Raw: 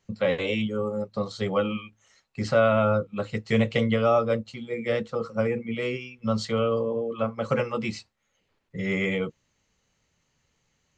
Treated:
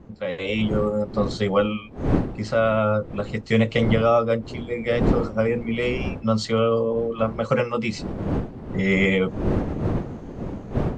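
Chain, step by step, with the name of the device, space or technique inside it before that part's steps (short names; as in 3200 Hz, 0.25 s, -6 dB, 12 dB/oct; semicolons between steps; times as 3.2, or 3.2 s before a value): smartphone video outdoors (wind noise 300 Hz -32 dBFS; AGC gain up to 14.5 dB; gain -6 dB; AAC 96 kbps 32000 Hz)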